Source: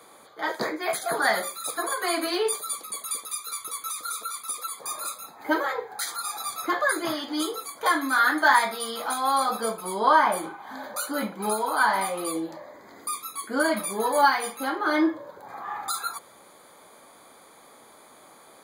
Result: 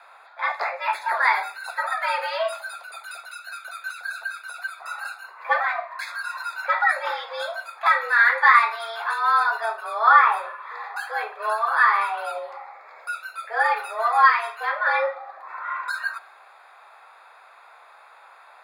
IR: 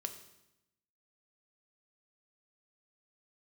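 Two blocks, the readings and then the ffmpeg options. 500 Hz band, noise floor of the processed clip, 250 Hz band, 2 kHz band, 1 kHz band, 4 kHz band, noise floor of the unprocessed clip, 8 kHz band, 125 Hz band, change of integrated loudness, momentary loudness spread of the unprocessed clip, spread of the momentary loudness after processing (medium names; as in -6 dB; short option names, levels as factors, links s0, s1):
-2.5 dB, -50 dBFS, under -35 dB, +6.0 dB, +4.0 dB, -3.5 dB, -52 dBFS, under -15 dB, no reading, +4.0 dB, 12 LU, 19 LU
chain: -filter_complex "[0:a]acrossover=split=410 3200:gain=0.158 1 0.0794[s0][s1][s2];[s0][s1][s2]amix=inputs=3:normalize=0,afreqshift=220,asplit=2[s3][s4];[1:a]atrim=start_sample=2205,asetrate=43218,aresample=44100[s5];[s4][s5]afir=irnorm=-1:irlink=0,volume=0.531[s6];[s3][s6]amix=inputs=2:normalize=0,volume=1.19"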